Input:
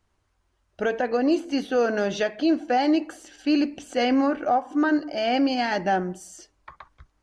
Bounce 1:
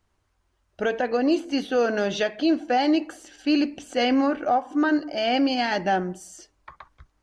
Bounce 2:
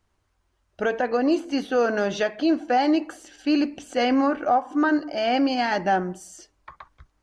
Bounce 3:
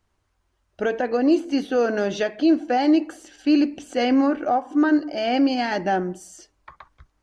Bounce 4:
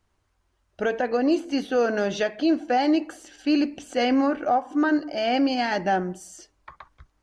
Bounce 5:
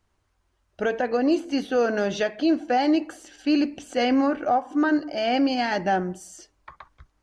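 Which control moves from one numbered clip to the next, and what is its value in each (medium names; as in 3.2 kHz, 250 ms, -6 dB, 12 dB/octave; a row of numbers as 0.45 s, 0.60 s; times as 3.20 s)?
dynamic bell, frequency: 3.4 kHz, 1.1 kHz, 320 Hz, 10 kHz, 100 Hz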